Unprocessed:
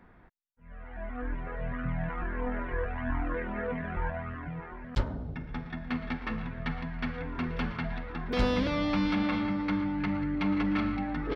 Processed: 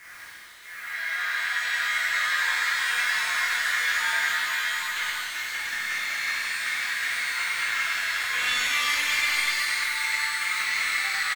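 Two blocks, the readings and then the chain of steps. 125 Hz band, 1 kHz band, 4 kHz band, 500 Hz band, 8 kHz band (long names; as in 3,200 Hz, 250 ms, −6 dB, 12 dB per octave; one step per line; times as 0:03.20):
below −25 dB, +5.0 dB, +17.0 dB, −13.5 dB, can't be measured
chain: high-pass filter 1,400 Hz 24 dB per octave
reverb reduction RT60 1.4 s
Butterworth low-pass 4,300 Hz 48 dB per octave
parametric band 2,100 Hz +8 dB 0.82 octaves
in parallel at −2.5 dB: downward compressor, threshold −45 dBFS, peak gain reduction 16.5 dB
on the sum: brickwall limiter −27 dBFS, peak gain reduction 8.5 dB
bit-depth reduction 10 bits, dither none
soft clipping −37.5 dBFS, distortion −10 dB
on a send: single-tap delay 96 ms −6 dB
on the sum: reverb with rising layers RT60 3.1 s, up +12 semitones, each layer −8 dB, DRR −8.5 dB
level +7 dB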